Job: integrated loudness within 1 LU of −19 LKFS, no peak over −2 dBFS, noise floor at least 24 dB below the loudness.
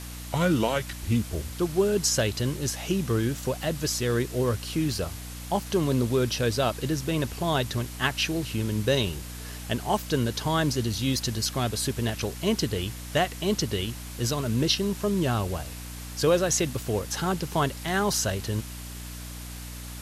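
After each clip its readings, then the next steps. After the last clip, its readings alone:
mains hum 60 Hz; hum harmonics up to 300 Hz; level of the hum −38 dBFS; background noise floor −39 dBFS; target noise floor −51 dBFS; integrated loudness −27.0 LKFS; sample peak −8.5 dBFS; target loudness −19.0 LKFS
→ hum removal 60 Hz, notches 5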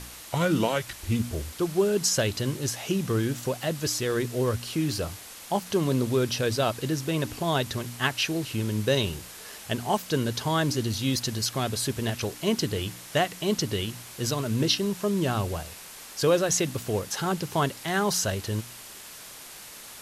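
mains hum none found; background noise floor −44 dBFS; target noise floor −52 dBFS
→ broadband denoise 8 dB, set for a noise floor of −44 dBFS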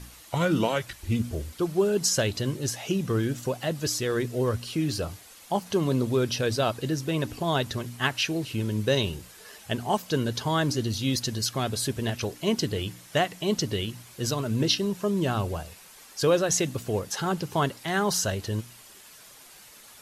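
background noise floor −50 dBFS; target noise floor −52 dBFS
→ broadband denoise 6 dB, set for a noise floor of −50 dBFS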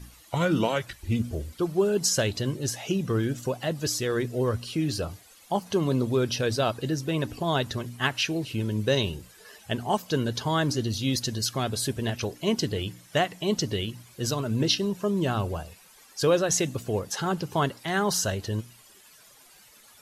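background noise floor −54 dBFS; integrated loudness −27.5 LKFS; sample peak −8.5 dBFS; target loudness −19.0 LKFS
→ level +8.5 dB
brickwall limiter −2 dBFS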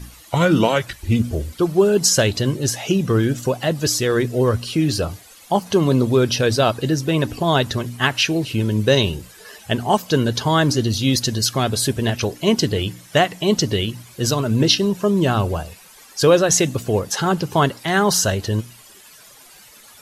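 integrated loudness −19.0 LKFS; sample peak −2.0 dBFS; background noise floor −46 dBFS

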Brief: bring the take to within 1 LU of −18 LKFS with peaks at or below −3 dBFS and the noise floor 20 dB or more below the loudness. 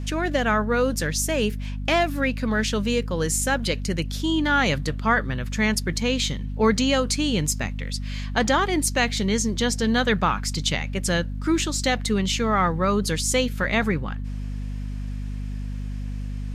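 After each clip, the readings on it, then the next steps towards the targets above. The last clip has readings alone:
crackle rate 37 per second; mains hum 50 Hz; hum harmonics up to 250 Hz; level of the hum −27 dBFS; integrated loudness −23.5 LKFS; sample peak −6.5 dBFS; target loudness −18.0 LKFS
→ click removal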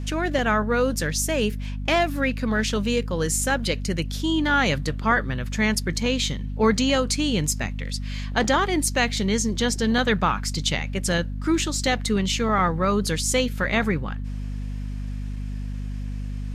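crackle rate 0.24 per second; mains hum 50 Hz; hum harmonics up to 250 Hz; level of the hum −27 dBFS
→ hum removal 50 Hz, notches 5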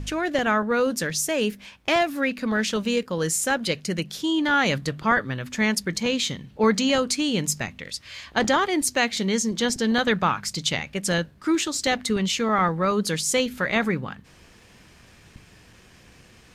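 mains hum none found; integrated loudness −23.5 LKFS; sample peak −7.0 dBFS; target loudness −18.0 LKFS
→ level +5.5 dB
brickwall limiter −3 dBFS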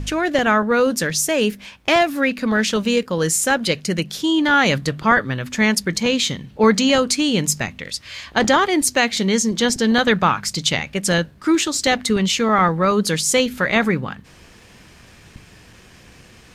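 integrated loudness −18.0 LKFS; sample peak −3.0 dBFS; background noise floor −47 dBFS

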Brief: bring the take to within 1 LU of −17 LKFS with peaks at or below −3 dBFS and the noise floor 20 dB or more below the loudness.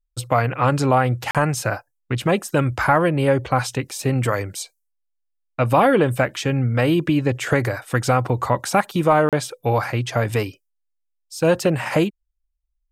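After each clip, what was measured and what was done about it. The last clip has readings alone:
number of dropouts 2; longest dropout 37 ms; integrated loudness −20.5 LKFS; sample peak −4.5 dBFS; target loudness −17.0 LKFS
→ repair the gap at 0:01.31/0:09.29, 37 ms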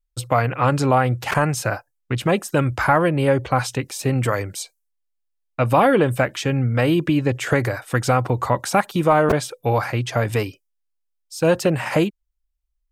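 number of dropouts 0; integrated loudness −20.5 LKFS; sample peak −4.5 dBFS; target loudness −17.0 LKFS
→ level +3.5 dB
brickwall limiter −3 dBFS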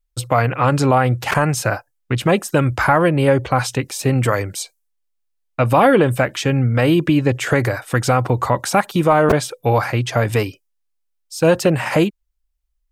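integrated loudness −17.5 LKFS; sample peak −3.0 dBFS; background noise floor −70 dBFS

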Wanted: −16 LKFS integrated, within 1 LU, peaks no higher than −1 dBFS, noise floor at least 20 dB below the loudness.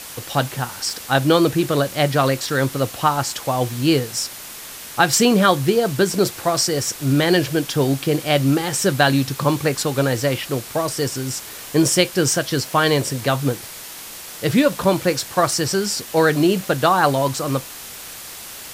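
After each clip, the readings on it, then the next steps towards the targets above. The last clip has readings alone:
background noise floor −36 dBFS; target noise floor −39 dBFS; integrated loudness −19.0 LKFS; sample peak −1.5 dBFS; target loudness −16.0 LKFS
→ broadband denoise 6 dB, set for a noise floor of −36 dBFS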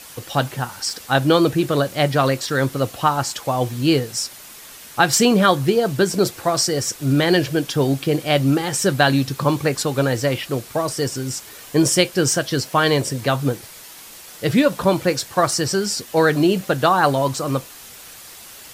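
background noise floor −41 dBFS; integrated loudness −19.5 LKFS; sample peak −1.5 dBFS; target loudness −16.0 LKFS
→ level +3.5 dB
brickwall limiter −1 dBFS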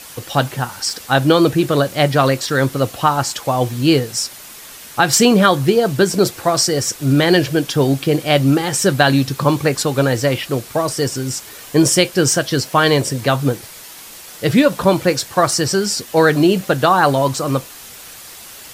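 integrated loudness −16.0 LKFS; sample peak −1.0 dBFS; background noise floor −37 dBFS

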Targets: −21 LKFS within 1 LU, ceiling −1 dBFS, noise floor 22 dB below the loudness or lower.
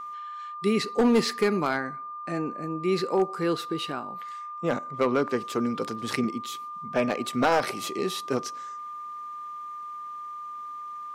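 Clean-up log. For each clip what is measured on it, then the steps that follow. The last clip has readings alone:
share of clipped samples 0.4%; peaks flattened at −15.0 dBFS; interfering tone 1,200 Hz; level of the tone −35 dBFS; integrated loudness −28.5 LKFS; sample peak −15.0 dBFS; target loudness −21.0 LKFS
→ clipped peaks rebuilt −15 dBFS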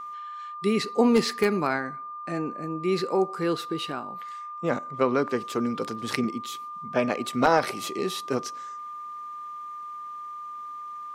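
share of clipped samples 0.0%; interfering tone 1,200 Hz; level of the tone −35 dBFS
→ notch filter 1,200 Hz, Q 30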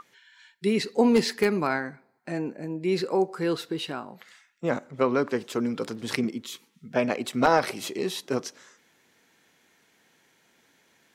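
interfering tone none found; integrated loudness −27.0 LKFS; sample peak −6.0 dBFS; target loudness −21.0 LKFS
→ level +6 dB
brickwall limiter −1 dBFS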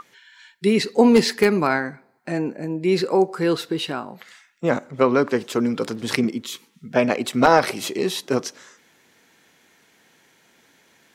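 integrated loudness −21.0 LKFS; sample peak −1.0 dBFS; background noise floor −59 dBFS

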